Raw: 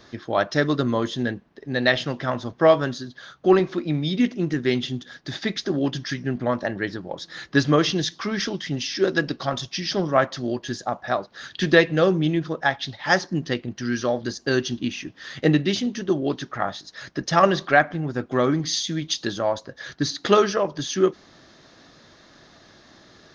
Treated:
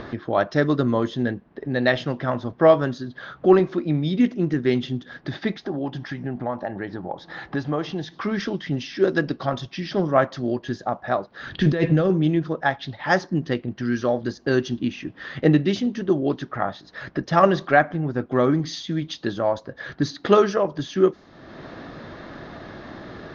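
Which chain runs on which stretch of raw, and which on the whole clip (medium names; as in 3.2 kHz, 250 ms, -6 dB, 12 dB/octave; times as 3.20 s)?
5.52–8.14 s: peaking EQ 810 Hz +11 dB 0.5 oct + compression 1.5:1, threshold -39 dBFS
11.47–12.10 s: bass shelf 190 Hz +9.5 dB + compressor with a negative ratio -20 dBFS
whole clip: upward compressor, threshold -25 dBFS; treble shelf 2.2 kHz -10 dB; level-controlled noise filter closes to 2.6 kHz, open at -16 dBFS; trim +2 dB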